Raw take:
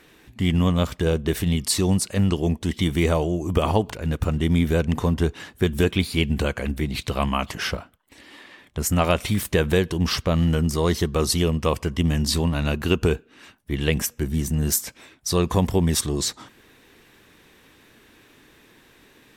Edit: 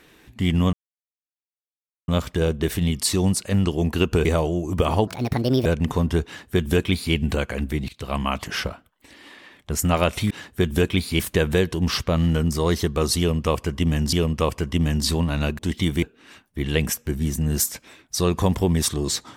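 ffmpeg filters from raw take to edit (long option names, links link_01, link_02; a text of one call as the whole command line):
ffmpeg -i in.wav -filter_complex "[0:a]asplit=12[link_01][link_02][link_03][link_04][link_05][link_06][link_07][link_08][link_09][link_10][link_11][link_12];[link_01]atrim=end=0.73,asetpts=PTS-STARTPTS,afade=type=out:start_time=0.726:duration=0.004:curve=hsin,apad=pad_dur=1.35[link_13];[link_02]atrim=start=0.73:end=2.582,asetpts=PTS-STARTPTS,afade=type=in:duration=0.004:curve=hsin[link_14];[link_03]atrim=start=12.828:end=13.152[link_15];[link_04]atrim=start=3.018:end=3.844[link_16];[link_05]atrim=start=3.84:end=4.73,asetpts=PTS-STARTPTS,asetrate=67032,aresample=44100[link_17];[link_06]atrim=start=4.726:end=6.96,asetpts=PTS-STARTPTS,afade=type=out:start_time=2.23:duration=0.004:curve=hsin:silence=0.0841395[link_18];[link_07]atrim=start=6.96:end=9.382,asetpts=PTS-STARTPTS,afade=type=in:duration=0.51:curve=qsin:silence=0.0841395[link_19];[link_08]atrim=start=5.328:end=6.222[link_20];[link_09]atrim=start=9.378:end=12.312[link_21];[link_10]atrim=start=11.368:end=12.832[link_22];[link_11]atrim=start=2.578:end=3.022[link_23];[link_12]atrim=start=13.148[link_24];[link_13][link_14]concat=n=2:v=0:a=1[link_25];[link_25][link_15]acrossfade=duration=0.004:curve1=hsin:curve2=hsin[link_26];[link_26][link_16]acrossfade=duration=0.004:curve1=hsin:curve2=hsin[link_27];[link_27][link_17]acrossfade=duration=0.004:curve1=hsin:curve2=hsin[link_28];[link_18][link_19]concat=n=2:v=0:a=1[link_29];[link_28][link_29]acrossfade=duration=0.004:curve1=hsin:curve2=hsin[link_30];[link_30][link_20]acrossfade=duration=0.004:curve1=hsin:curve2=hsin[link_31];[link_31][link_21]acrossfade=duration=0.004:curve1=hsin:curve2=hsin[link_32];[link_32][link_22]acrossfade=duration=0.004:curve1=hsin:curve2=hsin[link_33];[link_33][link_23]acrossfade=duration=0.004:curve1=hsin:curve2=hsin[link_34];[link_34][link_24]acrossfade=duration=0.004:curve1=hsin:curve2=hsin" out.wav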